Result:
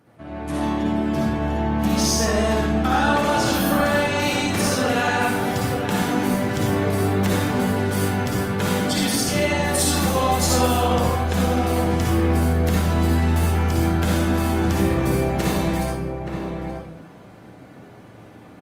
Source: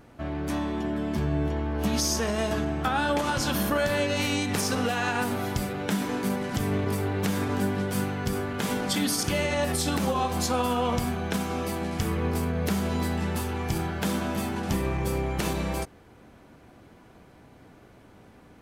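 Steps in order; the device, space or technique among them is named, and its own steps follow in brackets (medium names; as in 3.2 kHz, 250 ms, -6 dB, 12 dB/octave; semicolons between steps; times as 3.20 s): 9.72–10.87 s: treble shelf 4.5 kHz +7.5 dB; echo from a far wall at 150 m, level -7 dB; far-field microphone of a smart speaker (reverberation RT60 0.75 s, pre-delay 50 ms, DRR -3.5 dB; high-pass 84 Hz 24 dB/octave; level rider gain up to 7 dB; trim -4.5 dB; Opus 32 kbps 48 kHz)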